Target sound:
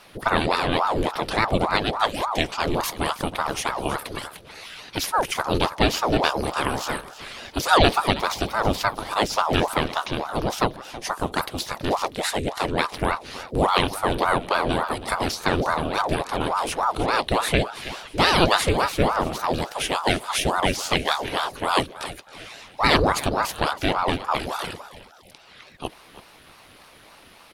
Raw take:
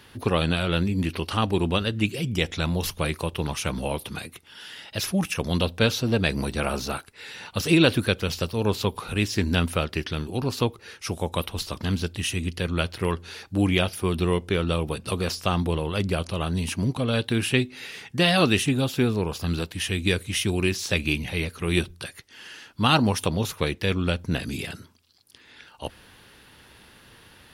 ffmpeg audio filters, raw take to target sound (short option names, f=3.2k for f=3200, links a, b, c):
-filter_complex "[0:a]asplit=4[a][b][c][d];[b]adelay=322,afreqshift=64,volume=-15.5dB[e];[c]adelay=644,afreqshift=128,volume=-23.7dB[f];[d]adelay=966,afreqshift=192,volume=-31.9dB[g];[a][e][f][g]amix=inputs=4:normalize=0,aeval=exprs='val(0)*sin(2*PI*640*n/s+640*0.75/3.5*sin(2*PI*3.5*n/s))':c=same,volume=4.5dB"